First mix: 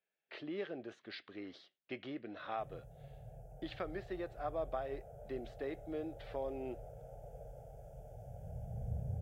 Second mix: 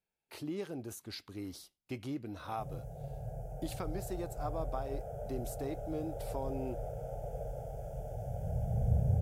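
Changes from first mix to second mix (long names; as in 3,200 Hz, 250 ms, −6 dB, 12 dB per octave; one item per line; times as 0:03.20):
speech: remove loudspeaker in its box 270–3,600 Hz, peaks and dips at 280 Hz −4 dB, 610 Hz +4 dB, 920 Hz −8 dB, 1,800 Hz +8 dB, 3,300 Hz +4 dB
background +10.5 dB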